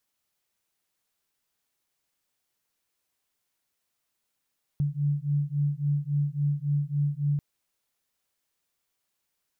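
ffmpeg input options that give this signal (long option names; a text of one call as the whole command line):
ffmpeg -f lavfi -i "aevalsrc='0.0447*(sin(2*PI*143*t)+sin(2*PI*146.6*t))':duration=2.59:sample_rate=44100" out.wav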